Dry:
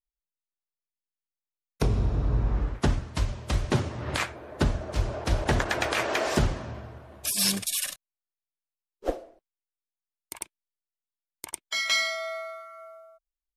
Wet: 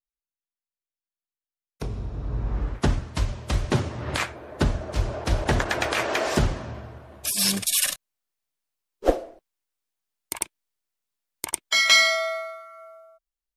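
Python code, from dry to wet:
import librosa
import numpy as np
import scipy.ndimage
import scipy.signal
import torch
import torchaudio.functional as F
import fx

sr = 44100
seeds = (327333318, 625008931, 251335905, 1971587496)

y = fx.gain(x, sr, db=fx.line((2.11, -7.0), (2.74, 2.0), (7.48, 2.0), (7.88, 8.5), (12.15, 8.5), (12.59, 0.5)))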